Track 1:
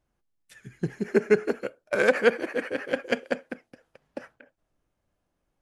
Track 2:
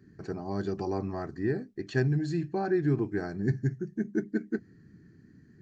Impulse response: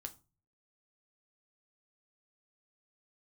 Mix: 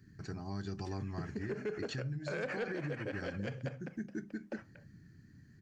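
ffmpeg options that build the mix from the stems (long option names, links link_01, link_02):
-filter_complex "[0:a]lowpass=frequency=7300:width=0.5412,lowpass=frequency=7300:width=1.3066,asoftclip=type=tanh:threshold=-10.5dB,adelay=350,volume=-10.5dB,asplit=2[link_01][link_02];[link_02]volume=-3dB[link_03];[1:a]equalizer=frequency=480:width_type=o:width=2.6:gain=-14.5,acompressor=threshold=-39dB:ratio=12,volume=0.5dB,asplit=2[link_04][link_05];[link_05]volume=-3dB[link_06];[2:a]atrim=start_sample=2205[link_07];[link_03][link_06]amix=inputs=2:normalize=0[link_08];[link_08][link_07]afir=irnorm=-1:irlink=0[link_09];[link_01][link_04][link_09]amix=inputs=3:normalize=0,alimiter=level_in=5.5dB:limit=-24dB:level=0:latency=1:release=72,volume=-5.5dB"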